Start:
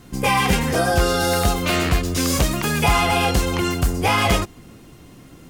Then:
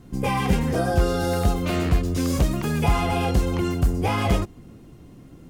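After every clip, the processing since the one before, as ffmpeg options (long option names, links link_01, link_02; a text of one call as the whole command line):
ffmpeg -i in.wav -af "tiltshelf=frequency=750:gain=5.5,volume=-5.5dB" out.wav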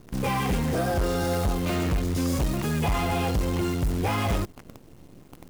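ffmpeg -i in.wav -af "asoftclip=type=tanh:threshold=-20dB,acrusher=bits=7:dc=4:mix=0:aa=0.000001" out.wav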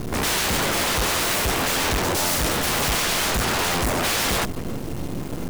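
ffmpeg -i in.wav -af "aeval=exprs='0.106*sin(PI/2*7.94*val(0)/0.106)':channel_layout=same" out.wav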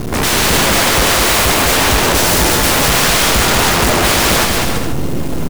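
ffmpeg -i in.wav -af "aecho=1:1:200|330|414.5|469.4|505.1:0.631|0.398|0.251|0.158|0.1,volume=8dB" out.wav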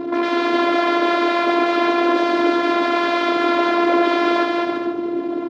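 ffmpeg -i in.wav -af "afftfilt=real='hypot(re,im)*cos(PI*b)':imag='0':win_size=512:overlap=0.75,highpass=frequency=190:width=0.5412,highpass=frequency=190:width=1.3066,equalizer=frequency=290:width_type=q:width=4:gain=7,equalizer=frequency=510:width_type=q:width=4:gain=9,equalizer=frequency=1900:width_type=q:width=4:gain=-5,equalizer=frequency=2800:width_type=q:width=4:gain=-10,lowpass=frequency=3100:width=0.5412,lowpass=frequency=3100:width=1.3066" out.wav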